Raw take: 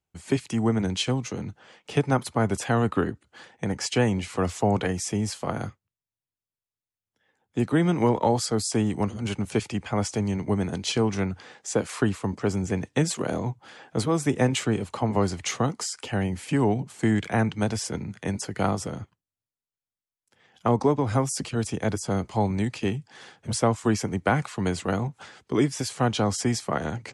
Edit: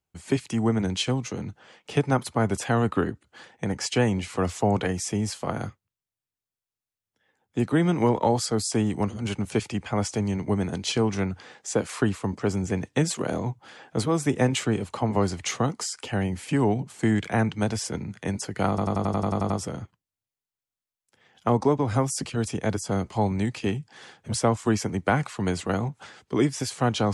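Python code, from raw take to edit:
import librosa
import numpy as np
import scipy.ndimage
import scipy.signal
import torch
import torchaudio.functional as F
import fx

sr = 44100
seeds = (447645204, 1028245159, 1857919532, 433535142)

y = fx.edit(x, sr, fx.stutter(start_s=18.69, slice_s=0.09, count=10), tone=tone)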